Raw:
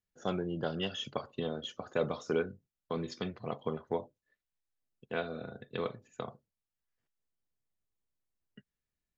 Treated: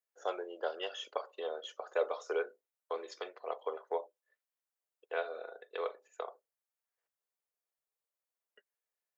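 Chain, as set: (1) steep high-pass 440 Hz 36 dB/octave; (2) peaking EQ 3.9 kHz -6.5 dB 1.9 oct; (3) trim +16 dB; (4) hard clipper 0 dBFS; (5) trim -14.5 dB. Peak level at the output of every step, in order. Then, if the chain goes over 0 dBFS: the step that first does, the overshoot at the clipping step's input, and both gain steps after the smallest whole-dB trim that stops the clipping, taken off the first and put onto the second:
-20.5 dBFS, -21.0 dBFS, -5.0 dBFS, -5.0 dBFS, -19.5 dBFS; nothing clips

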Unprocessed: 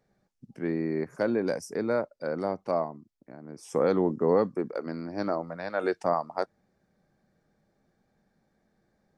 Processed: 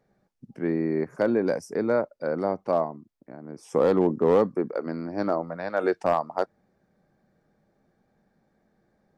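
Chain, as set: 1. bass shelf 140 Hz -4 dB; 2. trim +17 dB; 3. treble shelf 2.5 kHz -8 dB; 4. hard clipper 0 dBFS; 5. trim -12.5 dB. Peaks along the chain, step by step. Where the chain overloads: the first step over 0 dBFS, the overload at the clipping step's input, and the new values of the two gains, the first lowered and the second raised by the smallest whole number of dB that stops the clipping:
-12.5 dBFS, +4.5 dBFS, +4.0 dBFS, 0.0 dBFS, -12.5 dBFS; step 2, 4.0 dB; step 2 +13 dB, step 5 -8.5 dB

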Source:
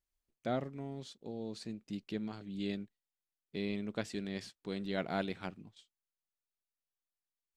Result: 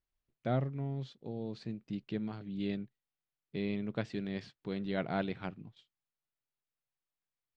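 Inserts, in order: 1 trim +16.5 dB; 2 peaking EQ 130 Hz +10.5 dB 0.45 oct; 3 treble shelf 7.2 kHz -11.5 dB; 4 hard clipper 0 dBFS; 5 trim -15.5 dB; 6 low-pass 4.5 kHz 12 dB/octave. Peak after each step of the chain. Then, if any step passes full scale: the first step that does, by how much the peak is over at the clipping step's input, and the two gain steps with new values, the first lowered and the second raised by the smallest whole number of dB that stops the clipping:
-3.0 dBFS, -3.5 dBFS, -4.0 dBFS, -4.0 dBFS, -19.5 dBFS, -19.5 dBFS; nothing clips

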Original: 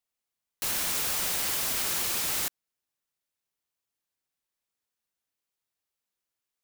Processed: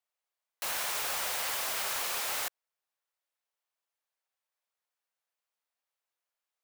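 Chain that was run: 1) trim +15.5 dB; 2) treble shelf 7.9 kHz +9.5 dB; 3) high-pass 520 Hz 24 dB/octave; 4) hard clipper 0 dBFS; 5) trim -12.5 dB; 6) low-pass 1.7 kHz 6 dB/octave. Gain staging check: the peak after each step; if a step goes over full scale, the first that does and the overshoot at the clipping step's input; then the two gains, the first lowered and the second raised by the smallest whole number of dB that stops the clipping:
+0.5 dBFS, +5.5 dBFS, +5.5 dBFS, 0.0 dBFS, -12.5 dBFS, -21.0 dBFS; step 1, 5.5 dB; step 1 +9.5 dB, step 5 -6.5 dB

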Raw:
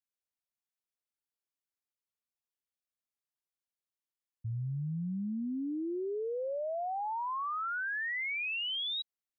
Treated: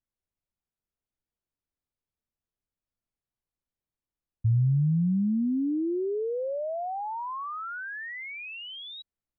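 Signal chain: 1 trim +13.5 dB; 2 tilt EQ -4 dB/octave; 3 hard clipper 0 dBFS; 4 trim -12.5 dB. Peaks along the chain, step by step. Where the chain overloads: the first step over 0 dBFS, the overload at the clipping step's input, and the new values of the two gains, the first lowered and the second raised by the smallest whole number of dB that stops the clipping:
-18.5 dBFS, -5.5 dBFS, -5.5 dBFS, -18.0 dBFS; nothing clips

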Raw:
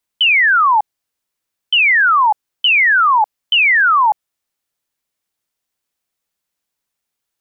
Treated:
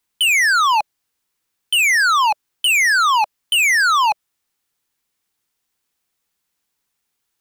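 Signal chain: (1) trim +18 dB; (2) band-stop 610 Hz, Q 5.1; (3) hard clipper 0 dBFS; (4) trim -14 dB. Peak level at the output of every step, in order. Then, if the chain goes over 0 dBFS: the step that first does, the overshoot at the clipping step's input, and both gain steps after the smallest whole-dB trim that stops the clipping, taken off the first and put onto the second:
+9.5 dBFS, +9.5 dBFS, 0.0 dBFS, -14.0 dBFS; step 1, 9.5 dB; step 1 +8 dB, step 4 -4 dB

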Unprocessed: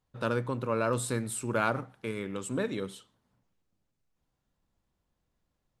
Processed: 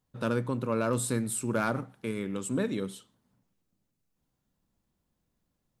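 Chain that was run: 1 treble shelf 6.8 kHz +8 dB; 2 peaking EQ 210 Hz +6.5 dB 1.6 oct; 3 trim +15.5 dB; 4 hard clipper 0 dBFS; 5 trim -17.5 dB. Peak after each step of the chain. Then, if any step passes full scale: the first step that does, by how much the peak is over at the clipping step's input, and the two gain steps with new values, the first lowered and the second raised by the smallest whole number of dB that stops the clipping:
-12.0 dBFS, -11.0 dBFS, +4.5 dBFS, 0.0 dBFS, -17.5 dBFS; step 3, 4.5 dB; step 3 +10.5 dB, step 5 -12.5 dB

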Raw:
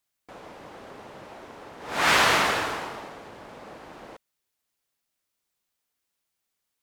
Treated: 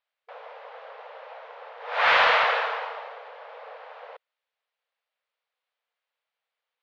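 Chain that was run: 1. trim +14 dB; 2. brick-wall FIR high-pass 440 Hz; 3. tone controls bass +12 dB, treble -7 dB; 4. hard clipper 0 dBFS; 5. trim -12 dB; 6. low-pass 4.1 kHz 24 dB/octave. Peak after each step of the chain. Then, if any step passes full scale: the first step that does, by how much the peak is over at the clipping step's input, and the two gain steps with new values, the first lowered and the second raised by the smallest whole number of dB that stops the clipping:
+6.5 dBFS, +6.0 dBFS, +5.0 dBFS, 0.0 dBFS, -12.0 dBFS, -10.5 dBFS; step 1, 5.0 dB; step 1 +9 dB, step 5 -7 dB

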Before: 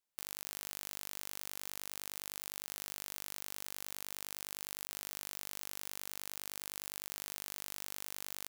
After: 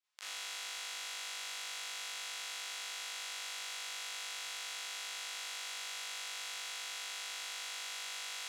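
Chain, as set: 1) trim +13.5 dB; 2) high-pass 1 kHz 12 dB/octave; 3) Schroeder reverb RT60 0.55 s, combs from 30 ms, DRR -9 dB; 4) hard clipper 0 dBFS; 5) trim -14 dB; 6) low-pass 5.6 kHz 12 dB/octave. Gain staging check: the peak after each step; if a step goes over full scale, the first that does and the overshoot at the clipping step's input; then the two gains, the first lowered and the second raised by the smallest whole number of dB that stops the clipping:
-2.5 dBFS, -3.0 dBFS, -3.0 dBFS, -3.0 dBFS, -17.0 dBFS, -28.5 dBFS; nothing clips

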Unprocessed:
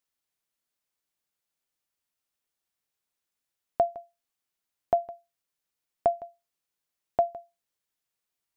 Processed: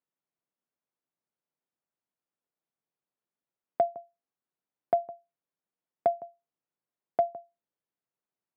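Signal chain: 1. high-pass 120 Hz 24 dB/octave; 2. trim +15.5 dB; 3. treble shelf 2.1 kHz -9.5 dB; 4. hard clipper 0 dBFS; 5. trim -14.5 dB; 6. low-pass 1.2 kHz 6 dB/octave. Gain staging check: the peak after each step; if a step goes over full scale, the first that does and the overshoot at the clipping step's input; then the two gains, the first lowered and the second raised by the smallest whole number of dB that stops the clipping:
-11.5 dBFS, +4.0 dBFS, +3.0 dBFS, 0.0 dBFS, -14.5 dBFS, -15.0 dBFS; step 2, 3.0 dB; step 2 +12.5 dB, step 5 -11.5 dB

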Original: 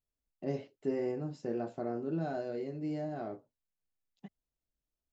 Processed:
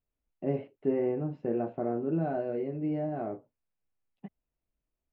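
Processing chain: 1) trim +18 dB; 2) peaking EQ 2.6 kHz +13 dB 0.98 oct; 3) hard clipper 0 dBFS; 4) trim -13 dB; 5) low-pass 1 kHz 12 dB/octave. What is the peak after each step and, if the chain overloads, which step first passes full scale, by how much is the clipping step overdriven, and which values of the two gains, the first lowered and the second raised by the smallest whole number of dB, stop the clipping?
-3.0 dBFS, -2.5 dBFS, -2.5 dBFS, -15.5 dBFS, -16.0 dBFS; nothing clips

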